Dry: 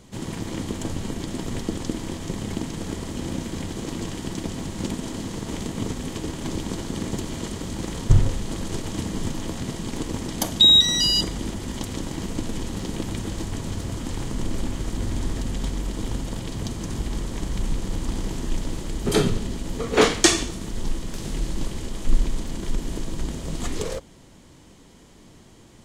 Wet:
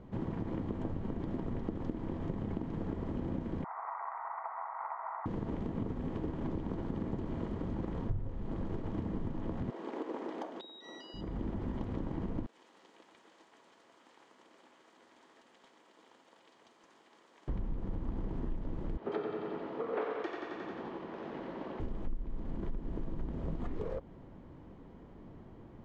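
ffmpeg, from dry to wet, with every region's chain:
ffmpeg -i in.wav -filter_complex "[0:a]asettb=1/sr,asplit=3[link_01][link_02][link_03];[link_01]atrim=end=3.644[link_04];[link_02]atrim=start=3.64:end=5.26,asetpts=PTS-STARTPTS,afade=type=in:duration=0.004:curve=qsin,afade=type=out:start_time=1.616:duration=0.004:curve=qsin,asuperpass=centerf=1100:order=12:qfactor=0.86,aecho=1:1:0.9:0.74,atrim=end_sample=71442,acontrast=55[link_05];[link_03]atrim=start=5.256[link_06];[link_04][link_05]acrossfade=duration=0.004:curve1=hsin:curve2=qsin[link_07];[link_07][link_06]acrossfade=duration=0.004:curve1=qsin:curve2=hsin,asettb=1/sr,asplit=3[link_08][link_09][link_10];[link_08]atrim=end=9.704[link_11];[link_09]atrim=start=9.7:end=11.14,asetpts=PTS-STARTPTS,afade=type=in:duration=0.004:curve=qsin,afade=type=out:start_time=1.436:duration=0.004:curve=qsin,highpass=frequency=340:width=0.5412,highpass=frequency=340:width=1.3066,acompressor=threshold=-17dB:ratio=6:attack=3.2:release=140:knee=1:detection=peak[link_12];[link_10]atrim=start=11.136[link_13];[link_11][link_12]acrossfade=duration=0.004:curve1=hsin:curve2=qsin[link_14];[link_14][link_13]acrossfade=duration=0.004:curve1=qsin:curve2=hsin,asettb=1/sr,asplit=3[link_15][link_16][link_17];[link_15]atrim=end=12.464[link_18];[link_16]atrim=start=12.46:end=17.48,asetpts=PTS-STARTPTS,afade=type=in:duration=0.004:curve=qsin,afade=type=out:start_time=5.016:duration=0.004:curve=qsin,highpass=340,aderivative,asoftclip=type=hard:threshold=-32.5dB[link_19];[link_17]atrim=start=17.476[link_20];[link_18][link_19]acrossfade=duration=0.004:curve1=hsin:curve2=qsin[link_21];[link_21][link_20]acrossfade=duration=0.004:curve1=qsin:curve2=hsin,asettb=1/sr,asplit=3[link_22][link_23][link_24];[link_22]atrim=end=18.974[link_25];[link_23]atrim=start=18.97:end=21.8,asetpts=PTS-STARTPTS,afade=type=in:duration=0.004:curve=qsin,afade=type=out:start_time=2.826:duration=0.004:curve=qsin,highpass=440,lowpass=4100,aecho=1:1:89|178|267|356|445|534|623|712|801:0.631|0.379|0.227|0.136|0.0818|0.0491|0.0294|0.0177|0.0106,atrim=end_sample=124803[link_26];[link_24]atrim=start=21.796[link_27];[link_25][link_26]acrossfade=duration=0.004:curve1=hsin:curve2=qsin[link_28];[link_28][link_27]acrossfade=duration=0.004:curve1=qsin:curve2=hsin,acompressor=threshold=-31dB:ratio=6,lowpass=1200,volume=-1.5dB" out.wav

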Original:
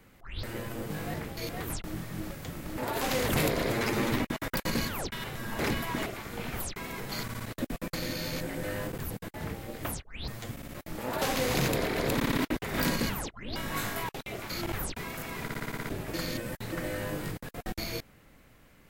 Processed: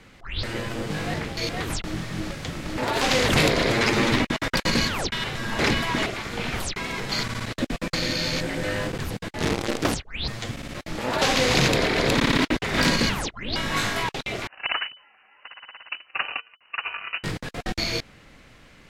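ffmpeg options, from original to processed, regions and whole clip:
ffmpeg -i in.wav -filter_complex "[0:a]asettb=1/sr,asplit=3[link_01][link_02][link_03];[link_01]atrim=end=9.384[link_04];[link_02]atrim=start=9.38:end=9.95,asetpts=PTS-STARTPTS,afade=type=in:duration=0.004:curve=qsin,afade=type=out:start_time=0.566:duration=0.004:curve=qsin,equalizer=frequency=350:width_type=o:width=1.7:gain=10,acrusher=bits=6:dc=4:mix=0:aa=0.000001[link_05];[link_03]atrim=start=9.946[link_06];[link_04][link_05]acrossfade=duration=0.004:curve1=hsin:curve2=qsin[link_07];[link_07][link_06]acrossfade=duration=0.004:curve1=qsin:curve2=hsin,asettb=1/sr,asplit=3[link_08][link_09][link_10];[link_08]atrim=end=14.474[link_11];[link_09]atrim=start=14.47:end=17.24,asetpts=PTS-STARTPTS,afade=type=in:duration=0.004:curve=qsin,afade=type=out:start_time=2.766:duration=0.004:curve=qsin,agate=range=-36dB:threshold=-32dB:ratio=16:release=100:detection=peak,equalizer=frequency=1600:width=0.43:gain=12.5,lowpass=frequency=2600:width_type=q:width=0.5098,lowpass=frequency=2600:width_type=q:width=0.6013,lowpass=frequency=2600:width_type=q:width=0.9,lowpass=frequency=2600:width_type=q:width=2.563,afreqshift=-3000[link_12];[link_10]atrim=start=17.236[link_13];[link_11][link_12]acrossfade=duration=0.004:curve1=hsin:curve2=qsin[link_14];[link_14][link_13]acrossfade=duration=0.004:curve1=qsin:curve2=hsin,lowpass=4900,highshelf=frequency=2600:gain=10,volume=6.5dB" out.wav

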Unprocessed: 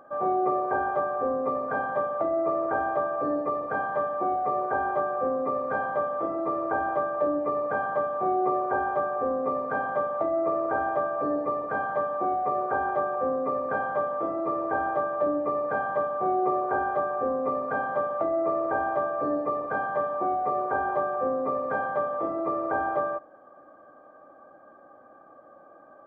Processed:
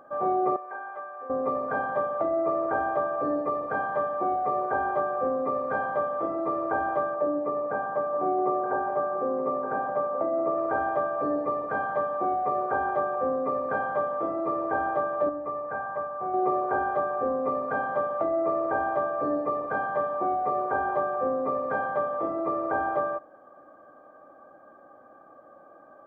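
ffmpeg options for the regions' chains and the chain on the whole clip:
ffmpeg -i in.wav -filter_complex "[0:a]asettb=1/sr,asplit=3[link_01][link_02][link_03];[link_01]atrim=end=0.564[link_04];[link_02]atrim=start=0.56:end=1.3,asetpts=PTS-STARTPTS,afade=type=in:duration=0.004:curve=qsin,afade=type=out:start_time=0.736:duration=0.004:curve=qsin,bandpass=frequency=2200:width_type=q:width=1.3,highshelf=frequency=2200:gain=-11[link_05];[link_03]atrim=start=1.296[link_06];[link_04][link_05]acrossfade=duration=0.004:curve1=hsin:curve2=qsin[link_07];[link_07][link_06]acrossfade=duration=0.004:curve1=qsin:curve2=hsin,asettb=1/sr,asplit=3[link_08][link_09][link_10];[link_08]atrim=end=7.144[link_11];[link_09]atrim=start=7.14:end=10.58,asetpts=PTS-STARTPTS,afade=type=in:duration=0.004:curve=qsin,afade=type=out:start_time=3.436:duration=0.004:curve=qsin,lowpass=frequency=1300:poles=1,equalizer=frequency=64:width_type=o:width=1.2:gain=-10,aecho=1:1:922:0.335,atrim=end_sample=151704[link_12];[link_10]atrim=start=10.576[link_13];[link_11][link_12]acrossfade=duration=0.004:curve1=hsin:curve2=qsin[link_14];[link_14][link_13]acrossfade=duration=0.004:curve1=qsin:curve2=hsin,asettb=1/sr,asplit=3[link_15][link_16][link_17];[link_15]atrim=end=15.294[link_18];[link_16]atrim=start=15.29:end=16.34,asetpts=PTS-STARTPTS,afade=type=in:duration=0.004:curve=qsin,afade=type=out:start_time=1.046:duration=0.004:curve=qsin,lowpass=1700,equalizer=frequency=300:width_type=o:width=2.8:gain=-8.5[link_19];[link_17]atrim=start=16.336[link_20];[link_18][link_19]acrossfade=duration=0.004:curve1=hsin:curve2=qsin[link_21];[link_21][link_20]acrossfade=duration=0.004:curve1=qsin:curve2=hsin" out.wav

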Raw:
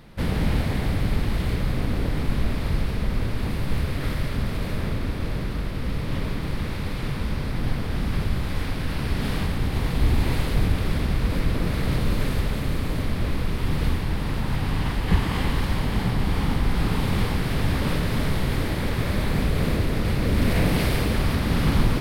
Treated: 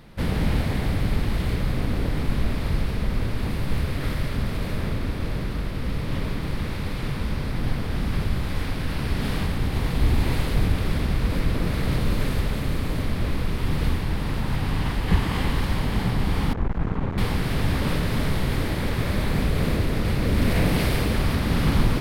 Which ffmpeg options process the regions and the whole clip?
ffmpeg -i in.wav -filter_complex "[0:a]asettb=1/sr,asplit=3[link_01][link_02][link_03];[link_01]atrim=end=16.534[link_04];[link_02]atrim=start=16.53:end=17.18,asetpts=PTS-STARTPTS,afade=type=in:duration=0.004:curve=qsin,afade=type=out:start_time=0.646:duration=0.004:curve=qsin,lowpass=1400,aeval=exprs='clip(val(0),-1,0.0316)':channel_layout=same[link_05];[link_03]atrim=start=17.176[link_06];[link_04][link_05]acrossfade=duration=0.004:curve1=hsin:curve2=qsin[link_07];[link_07][link_06]acrossfade=duration=0.004:curve1=qsin:curve2=hsin" out.wav

